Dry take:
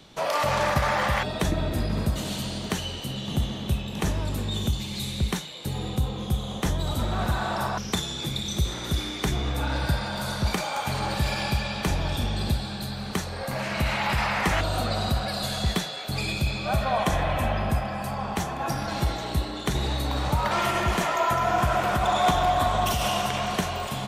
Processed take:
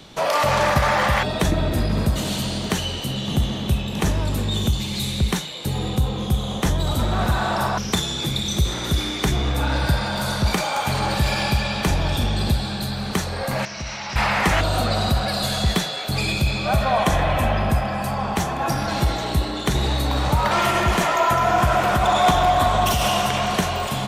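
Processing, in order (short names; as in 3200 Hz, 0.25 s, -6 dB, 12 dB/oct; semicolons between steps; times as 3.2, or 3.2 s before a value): 13.65–14.16 ladder low-pass 5900 Hz, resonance 85%; in parallel at -8 dB: soft clip -29.5 dBFS, distortion -7 dB; on the sum: gain +4 dB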